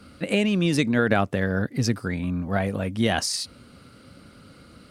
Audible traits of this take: Nellymoser

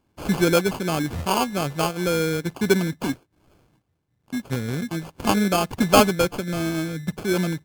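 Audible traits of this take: aliases and images of a low sample rate 1900 Hz, jitter 0%; MP3

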